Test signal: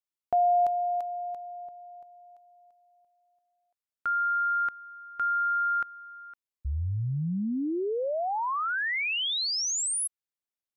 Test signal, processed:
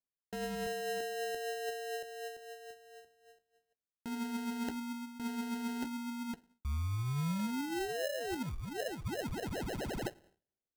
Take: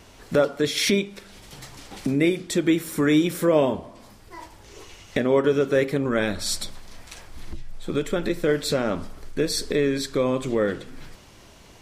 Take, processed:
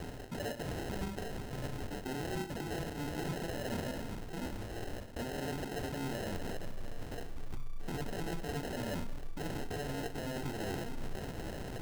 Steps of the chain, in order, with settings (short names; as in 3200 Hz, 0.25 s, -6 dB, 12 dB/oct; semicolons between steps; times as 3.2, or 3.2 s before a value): in parallel at -6 dB: sine folder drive 18 dB, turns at -7.5 dBFS; on the sum: small resonant body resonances 1600/2400 Hz, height 13 dB; flange 0.96 Hz, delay 6.2 ms, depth 2.8 ms, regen +53%; reverse; compressor 8:1, threshold -32 dBFS; reverse; two-slope reverb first 0.42 s, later 1.6 s, from -16 dB, DRR 14.5 dB; expander -54 dBFS, range -20 dB; low shelf 330 Hz +3.5 dB; sample-and-hold 38×; gain -5.5 dB